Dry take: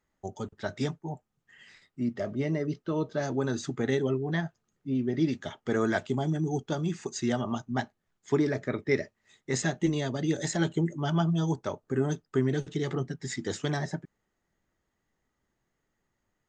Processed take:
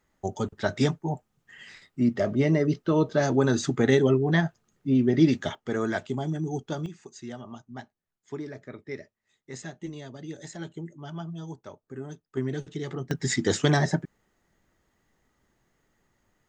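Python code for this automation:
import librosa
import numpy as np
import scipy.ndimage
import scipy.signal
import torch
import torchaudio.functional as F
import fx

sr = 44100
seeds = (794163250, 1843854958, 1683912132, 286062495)

y = fx.gain(x, sr, db=fx.steps((0.0, 7.0), (5.55, -1.0), (6.86, -10.5), (12.37, -3.0), (13.11, 8.5)))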